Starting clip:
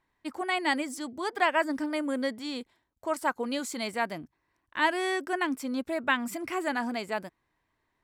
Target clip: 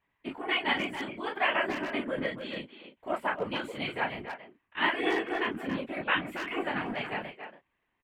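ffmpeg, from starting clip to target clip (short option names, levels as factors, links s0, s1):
-filter_complex "[0:a]asplit=2[s0][s1];[s1]aecho=0:1:13|32|48:0.531|0.668|0.335[s2];[s0][s2]amix=inputs=2:normalize=0,afftfilt=real='hypot(re,im)*cos(2*PI*random(0))':imag='hypot(re,im)*sin(2*PI*random(1))':win_size=512:overlap=0.75,highshelf=f=4000:t=q:w=3:g=-12,asplit=2[s3][s4];[s4]adelay=280,highpass=300,lowpass=3400,asoftclip=type=hard:threshold=0.0631,volume=0.398[s5];[s3][s5]amix=inputs=2:normalize=0"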